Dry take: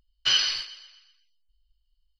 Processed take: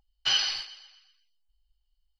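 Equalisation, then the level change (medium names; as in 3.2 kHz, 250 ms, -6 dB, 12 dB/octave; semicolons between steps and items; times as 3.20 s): peaking EQ 810 Hz +13.5 dB 0.27 oct; -3.0 dB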